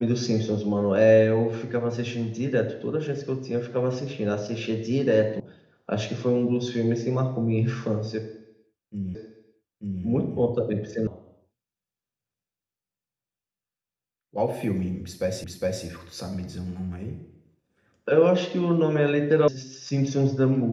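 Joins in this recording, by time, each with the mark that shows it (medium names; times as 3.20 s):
5.40 s: sound stops dead
9.15 s: repeat of the last 0.89 s
11.07 s: sound stops dead
15.44 s: repeat of the last 0.41 s
19.48 s: sound stops dead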